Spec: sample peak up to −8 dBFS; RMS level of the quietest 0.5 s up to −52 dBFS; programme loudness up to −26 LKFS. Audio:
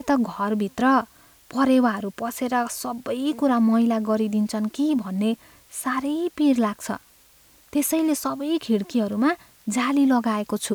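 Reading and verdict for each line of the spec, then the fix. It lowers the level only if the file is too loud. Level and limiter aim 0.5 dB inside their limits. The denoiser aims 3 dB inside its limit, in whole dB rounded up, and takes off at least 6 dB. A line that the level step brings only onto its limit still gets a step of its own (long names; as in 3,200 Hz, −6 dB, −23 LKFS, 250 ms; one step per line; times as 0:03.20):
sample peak −8.5 dBFS: in spec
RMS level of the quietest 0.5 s −55 dBFS: in spec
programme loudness −23.5 LKFS: out of spec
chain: level −3 dB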